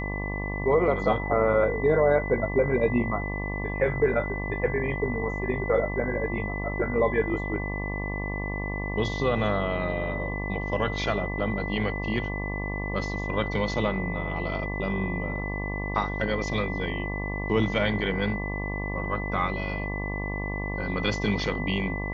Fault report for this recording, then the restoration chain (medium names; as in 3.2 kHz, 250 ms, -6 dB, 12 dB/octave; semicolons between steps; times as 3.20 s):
buzz 50 Hz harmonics 23 -32 dBFS
whine 2 kHz -34 dBFS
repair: band-stop 2 kHz, Q 30; de-hum 50 Hz, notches 23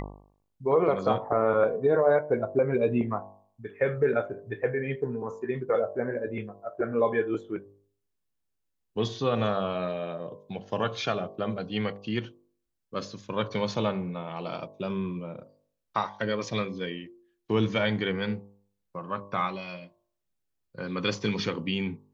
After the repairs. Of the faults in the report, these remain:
nothing left